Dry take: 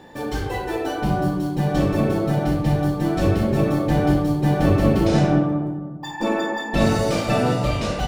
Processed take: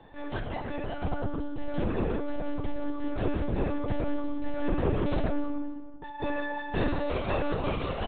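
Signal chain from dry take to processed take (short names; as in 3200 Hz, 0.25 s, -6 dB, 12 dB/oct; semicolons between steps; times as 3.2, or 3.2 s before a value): feedback echo 0.278 s, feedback 23%, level -17 dB; soft clip -10.5 dBFS, distortion -20 dB; monotone LPC vocoder at 8 kHz 290 Hz; gain -7.5 dB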